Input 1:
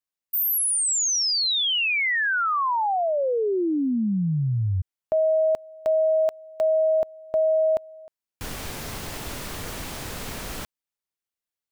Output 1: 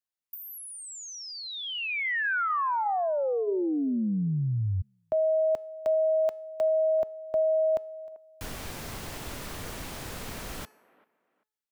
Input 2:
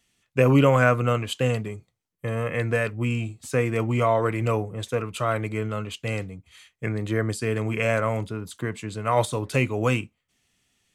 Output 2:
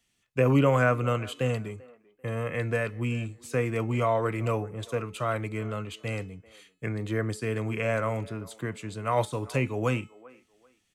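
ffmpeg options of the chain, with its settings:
-filter_complex "[0:a]bandreject=f=429.7:t=h:w=4,bandreject=f=859.4:t=h:w=4,bandreject=f=1.2891k:t=h:w=4,bandreject=f=1.7188k:t=h:w=4,bandreject=f=2.1485k:t=h:w=4,bandreject=f=2.5782k:t=h:w=4,bandreject=f=3.0079k:t=h:w=4,bandreject=f=3.4376k:t=h:w=4,bandreject=f=3.8673k:t=h:w=4,bandreject=f=4.297k:t=h:w=4,bandreject=f=4.7267k:t=h:w=4,bandreject=f=5.1564k:t=h:w=4,bandreject=f=5.5861k:t=h:w=4,bandreject=f=6.0158k:t=h:w=4,bandreject=f=6.4455k:t=h:w=4,bandreject=f=6.8752k:t=h:w=4,bandreject=f=7.3049k:t=h:w=4,bandreject=f=7.7346k:t=h:w=4,bandreject=f=8.1643k:t=h:w=4,bandreject=f=8.594k:t=h:w=4,bandreject=f=9.0237k:t=h:w=4,bandreject=f=9.4534k:t=h:w=4,bandreject=f=9.8831k:t=h:w=4,bandreject=f=10.3128k:t=h:w=4,bandreject=f=10.7425k:t=h:w=4,bandreject=f=11.1722k:t=h:w=4,bandreject=f=11.6019k:t=h:w=4,bandreject=f=12.0316k:t=h:w=4,bandreject=f=12.4613k:t=h:w=4,bandreject=f=12.891k:t=h:w=4,bandreject=f=13.3207k:t=h:w=4,bandreject=f=13.7504k:t=h:w=4,bandreject=f=14.1801k:t=h:w=4,bandreject=f=14.6098k:t=h:w=4,bandreject=f=15.0395k:t=h:w=4,acrossover=split=230|2400[a][b][c];[b]aecho=1:1:391|782:0.0944|0.0236[d];[c]acompressor=threshold=-40dB:ratio=6:attack=50:release=99:knee=1:detection=rms[e];[a][d][e]amix=inputs=3:normalize=0,volume=-4dB"

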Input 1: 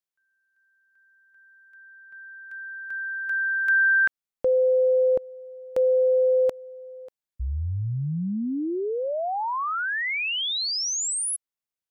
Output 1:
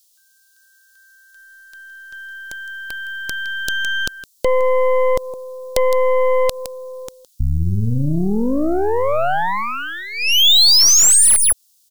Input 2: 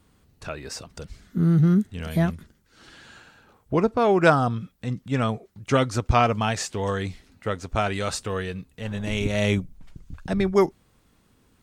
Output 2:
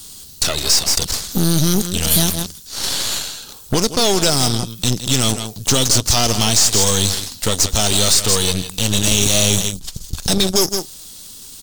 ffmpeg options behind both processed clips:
-filter_complex "[0:a]aecho=1:1:163:0.178,acrossover=split=910|3800[a][b][c];[a]acompressor=threshold=-27dB:ratio=4[d];[b]acompressor=threshold=-42dB:ratio=4[e];[c]acompressor=threshold=-41dB:ratio=4[f];[d][e][f]amix=inputs=3:normalize=0,highshelf=f=5.2k:g=-5.5,acrossover=split=2800[g][h];[h]acompressor=threshold=-45dB:ratio=4:attack=1:release=60[i];[g][i]amix=inputs=2:normalize=0,aexciter=amount=13.2:drive=8.4:freq=3.3k,apsyclip=17.5dB,aeval=exprs='1.12*(cos(1*acos(clip(val(0)/1.12,-1,1)))-cos(1*PI/2))+0.126*(cos(4*acos(clip(val(0)/1.12,-1,1)))-cos(4*PI/2))+0.126*(cos(8*acos(clip(val(0)/1.12,-1,1)))-cos(8*PI/2))':c=same,volume=-7.5dB"

